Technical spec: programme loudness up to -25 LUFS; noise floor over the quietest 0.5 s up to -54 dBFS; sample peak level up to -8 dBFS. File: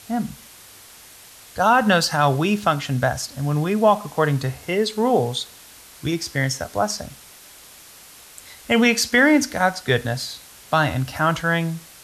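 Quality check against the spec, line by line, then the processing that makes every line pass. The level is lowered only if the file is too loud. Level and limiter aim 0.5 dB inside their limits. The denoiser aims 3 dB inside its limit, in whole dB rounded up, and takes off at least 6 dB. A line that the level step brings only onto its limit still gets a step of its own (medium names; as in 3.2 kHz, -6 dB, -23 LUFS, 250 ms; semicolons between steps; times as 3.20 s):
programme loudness -20.5 LUFS: fail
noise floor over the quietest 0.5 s -45 dBFS: fail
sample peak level -5.5 dBFS: fail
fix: noise reduction 7 dB, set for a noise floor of -45 dBFS; trim -5 dB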